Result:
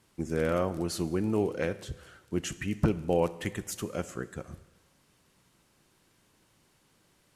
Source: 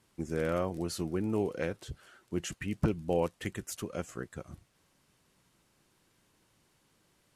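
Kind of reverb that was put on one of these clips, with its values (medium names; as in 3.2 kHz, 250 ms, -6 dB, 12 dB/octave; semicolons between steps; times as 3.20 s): Schroeder reverb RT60 1.2 s, combs from 26 ms, DRR 15 dB; trim +3 dB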